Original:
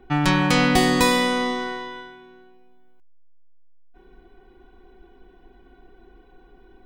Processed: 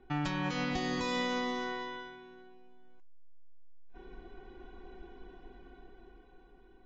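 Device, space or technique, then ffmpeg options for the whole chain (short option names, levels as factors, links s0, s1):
low-bitrate web radio: -af "dynaudnorm=f=330:g=9:m=3.16,alimiter=limit=0.188:level=0:latency=1:release=377,volume=0.355" -ar 16000 -c:a aac -b:a 24k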